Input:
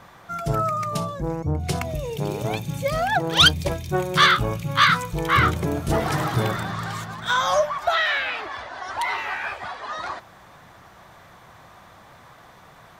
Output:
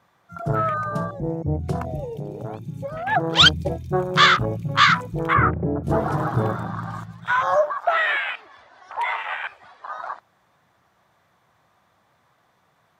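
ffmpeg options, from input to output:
-filter_complex "[0:a]highpass=80,afwtdn=0.0562,asplit=3[a][b][c];[a]afade=t=out:st=2.04:d=0.02[d];[b]acompressor=threshold=-30dB:ratio=6,afade=t=in:st=2.04:d=0.02,afade=t=out:st=3.06:d=0.02[e];[c]afade=t=in:st=3.06:d=0.02[f];[d][e][f]amix=inputs=3:normalize=0,asplit=3[g][h][i];[g]afade=t=out:st=5.33:d=0.02[j];[h]lowpass=f=1.7k:w=0.5412,lowpass=f=1.7k:w=1.3066,afade=t=in:st=5.33:d=0.02,afade=t=out:st=5.83:d=0.02[k];[i]afade=t=in:st=5.83:d=0.02[l];[j][k][l]amix=inputs=3:normalize=0,volume=1.5dB"

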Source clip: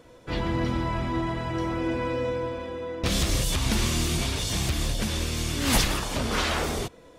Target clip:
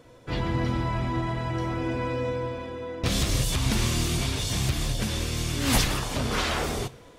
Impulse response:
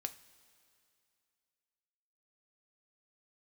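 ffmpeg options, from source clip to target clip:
-filter_complex "[0:a]asplit=2[a][b];[b]equalizer=f=130:w=2.7:g=9[c];[1:a]atrim=start_sample=2205[d];[c][d]afir=irnorm=-1:irlink=0,volume=1.5dB[e];[a][e]amix=inputs=2:normalize=0,volume=-6.5dB"

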